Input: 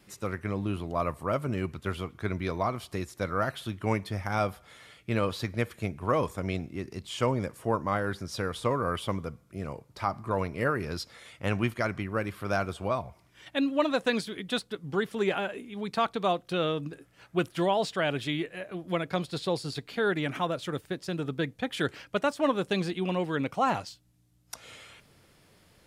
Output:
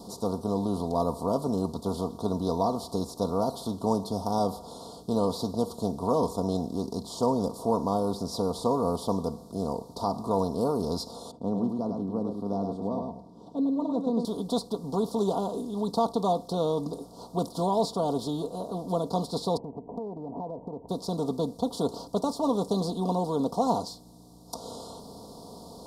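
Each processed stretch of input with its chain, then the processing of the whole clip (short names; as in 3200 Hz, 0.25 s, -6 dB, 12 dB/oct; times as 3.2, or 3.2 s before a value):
11.31–14.25 band-pass 230 Hz, Q 1.4 + echo 0.102 s -7 dB
19.57–20.89 steep low-pass 970 Hz 96 dB/oct + compressor 10:1, threshold -42 dBFS
whole clip: per-bin compression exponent 0.6; elliptic band-stop 980–4200 Hz, stop band 60 dB; comb 4.3 ms, depth 55%; gain -1.5 dB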